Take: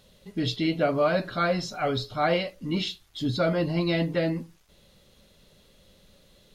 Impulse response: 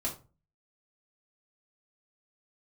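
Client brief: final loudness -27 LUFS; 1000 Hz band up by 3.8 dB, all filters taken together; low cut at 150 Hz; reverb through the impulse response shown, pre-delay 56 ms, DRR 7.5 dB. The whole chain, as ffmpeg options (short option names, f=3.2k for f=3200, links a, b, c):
-filter_complex "[0:a]highpass=150,equalizer=f=1k:t=o:g=6,asplit=2[a][b];[1:a]atrim=start_sample=2205,adelay=56[c];[b][c]afir=irnorm=-1:irlink=0,volume=-11dB[d];[a][d]amix=inputs=2:normalize=0,volume=-2.5dB"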